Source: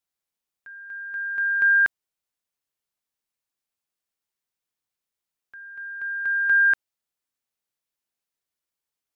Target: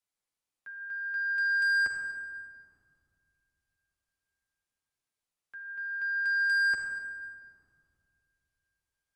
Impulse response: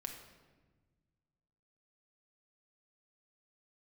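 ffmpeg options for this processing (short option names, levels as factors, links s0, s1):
-filter_complex "[0:a]acrossover=split=110|470|1100[s0][s1][s2][s3];[s2]acompressor=threshold=0.00708:ratio=6[s4];[s0][s1][s4][s3]amix=inputs=4:normalize=0,asoftclip=type=tanh:threshold=0.0596[s5];[1:a]atrim=start_sample=2205,asetrate=22491,aresample=44100[s6];[s5][s6]afir=irnorm=-1:irlink=0,volume=0.708"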